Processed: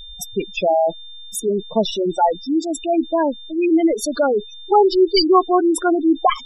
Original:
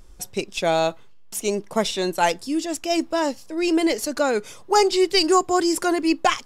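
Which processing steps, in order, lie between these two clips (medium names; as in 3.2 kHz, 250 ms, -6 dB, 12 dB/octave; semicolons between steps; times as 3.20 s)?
whistle 3.6 kHz -41 dBFS; spectral gate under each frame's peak -10 dB strong; trim +5 dB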